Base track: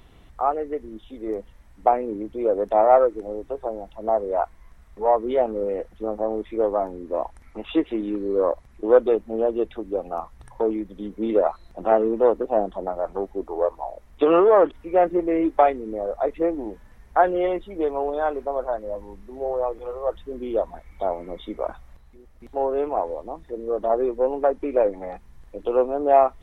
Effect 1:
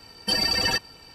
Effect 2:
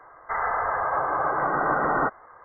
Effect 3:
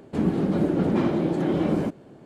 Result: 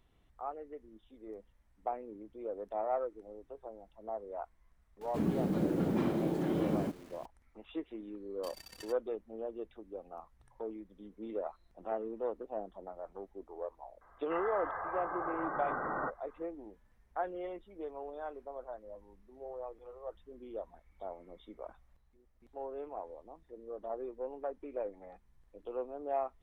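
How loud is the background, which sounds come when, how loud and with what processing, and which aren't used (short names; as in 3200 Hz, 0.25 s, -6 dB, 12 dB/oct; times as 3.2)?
base track -18.5 dB
5.01 add 3 -9 dB + bit-crush 8-bit
8.15 add 1 -17 dB + power-law curve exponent 3
14.01 add 2 -13.5 dB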